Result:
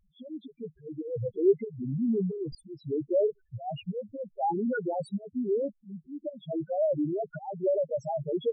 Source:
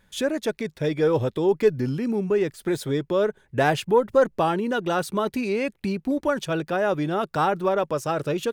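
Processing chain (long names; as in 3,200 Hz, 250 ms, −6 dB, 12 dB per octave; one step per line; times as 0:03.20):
volume swells 316 ms
spectral peaks only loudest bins 2
0:01.91–0:02.55: level that may fall only so fast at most 78 dB per second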